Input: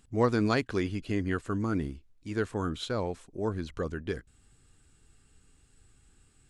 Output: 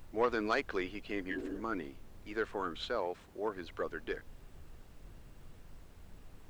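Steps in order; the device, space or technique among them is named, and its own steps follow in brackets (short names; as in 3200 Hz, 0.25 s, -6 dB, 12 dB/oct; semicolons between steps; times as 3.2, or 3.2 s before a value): 1.33–1.57 spectral repair 210–1600 Hz before; aircraft cabin announcement (BPF 460–3200 Hz; soft clip -20.5 dBFS, distortion -17 dB; brown noise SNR 11 dB); 2.95–3.57 HPF 110 Hz 6 dB/oct; high shelf 9300 Hz +8 dB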